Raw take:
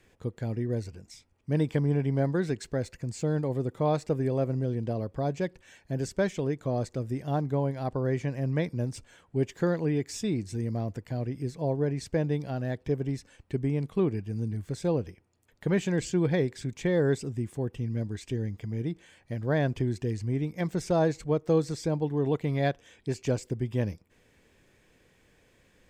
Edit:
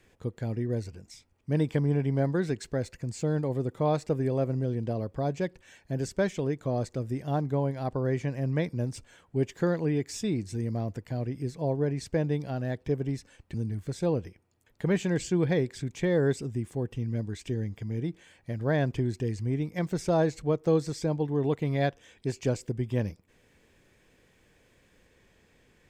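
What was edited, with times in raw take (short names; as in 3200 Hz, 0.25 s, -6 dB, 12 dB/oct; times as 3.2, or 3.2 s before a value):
13.54–14.36 cut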